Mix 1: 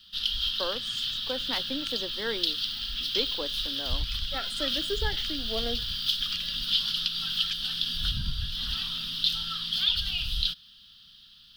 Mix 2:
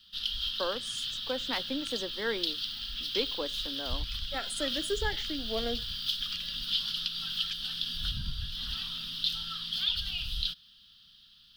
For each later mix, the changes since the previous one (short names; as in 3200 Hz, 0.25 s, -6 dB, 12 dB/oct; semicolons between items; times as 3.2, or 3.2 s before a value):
speech: remove air absorption 55 m; background -4.5 dB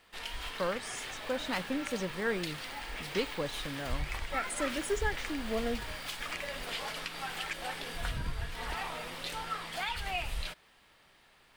speech: remove steep high-pass 230 Hz 36 dB/oct; background: remove EQ curve 230 Hz 0 dB, 360 Hz -25 dB, 800 Hz -28 dB, 1400 Hz -6 dB, 2200 Hz -18 dB, 3200 Hz +14 dB, 5100 Hz +9 dB, 7300 Hz -11 dB, 15000 Hz +2 dB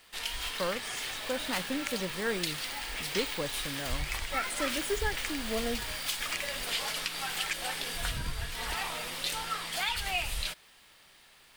background: add high shelf 3100 Hz +11.5 dB